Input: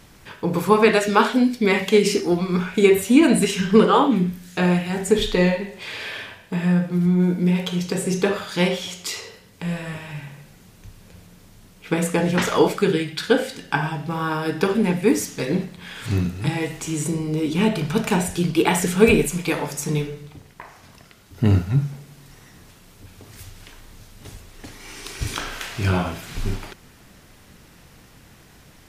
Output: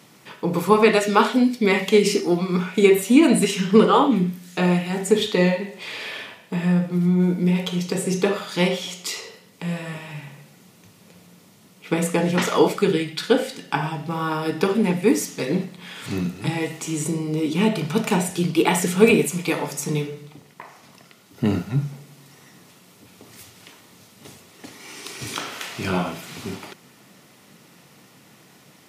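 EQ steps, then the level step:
high-pass filter 140 Hz 24 dB per octave
notch filter 1,600 Hz, Q 9.9
0.0 dB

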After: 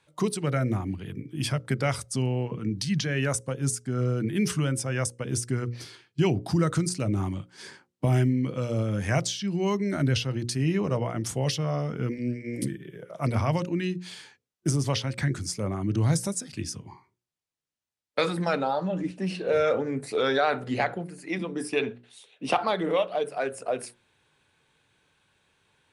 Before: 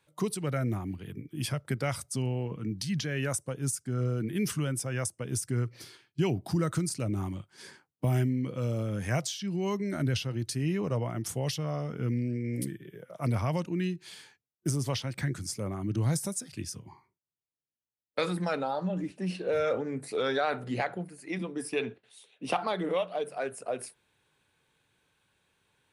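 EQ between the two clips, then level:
low-pass filter 9,000 Hz 12 dB per octave
mains-hum notches 60/120/180/240/300/360/420/480/540 Hz
+5.0 dB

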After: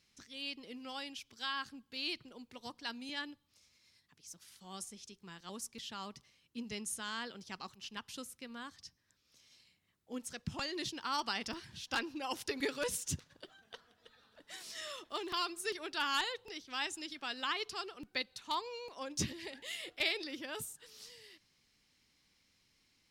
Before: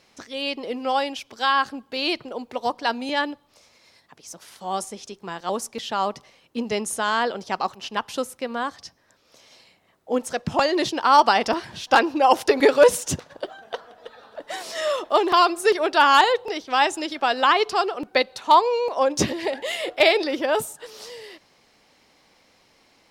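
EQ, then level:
guitar amp tone stack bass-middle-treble 6-0-2
+4.0 dB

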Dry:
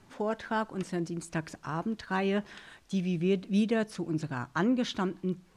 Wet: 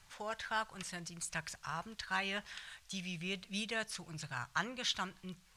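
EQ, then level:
guitar amp tone stack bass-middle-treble 10-0-10
+4.5 dB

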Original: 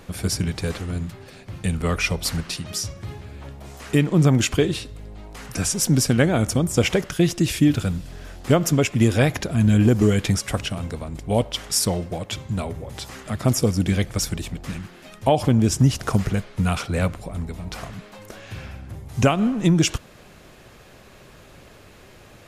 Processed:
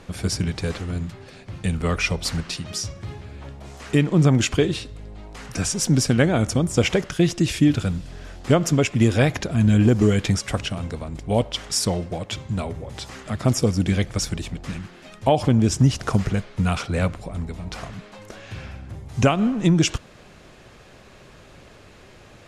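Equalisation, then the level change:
low-pass filter 8,400 Hz 12 dB per octave
0.0 dB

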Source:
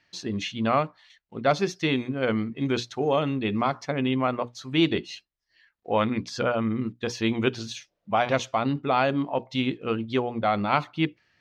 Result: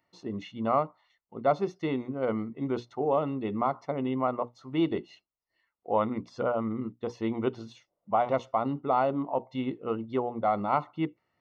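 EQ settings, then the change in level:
Savitzky-Golay smoothing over 65 samples
spectral tilt +2.5 dB per octave
0.0 dB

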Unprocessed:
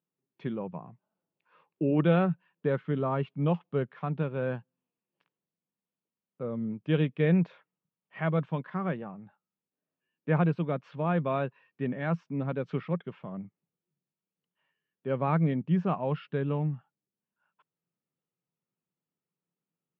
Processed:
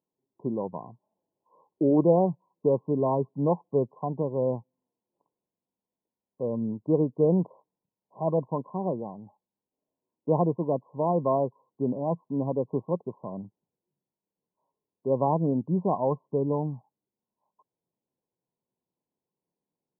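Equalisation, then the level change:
linear-phase brick-wall low-pass 1,100 Hz
parametric band 160 Hz −9.5 dB 0.63 octaves
+6.0 dB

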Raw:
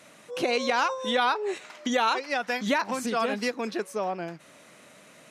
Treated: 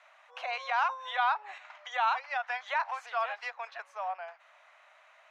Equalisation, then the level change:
Butterworth high-pass 680 Hz 48 dB per octave
high-frequency loss of the air 480 metres
parametric band 6,500 Hz +12 dB 0.53 octaves
0.0 dB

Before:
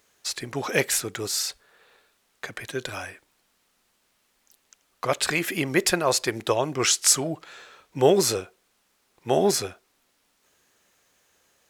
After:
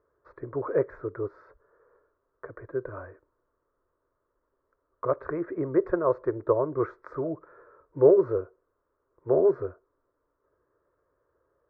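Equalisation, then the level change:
low-pass filter 1,100 Hz 24 dB per octave
phaser with its sweep stopped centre 780 Hz, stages 6
+2.0 dB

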